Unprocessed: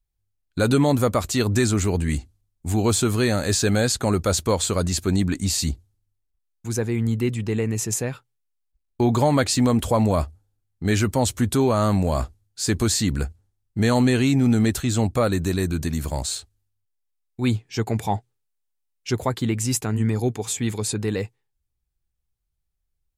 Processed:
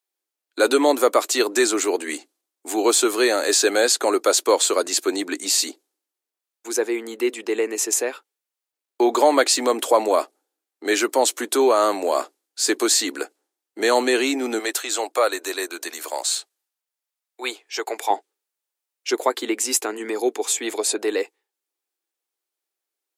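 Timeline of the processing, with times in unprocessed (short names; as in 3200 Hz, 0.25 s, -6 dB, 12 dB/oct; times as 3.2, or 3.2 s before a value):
14.59–18.1 HPF 540 Hz
20.64–21.07 bell 650 Hz +10.5 dB 0.31 oct
whole clip: steep high-pass 310 Hz 48 dB/oct; gain +5 dB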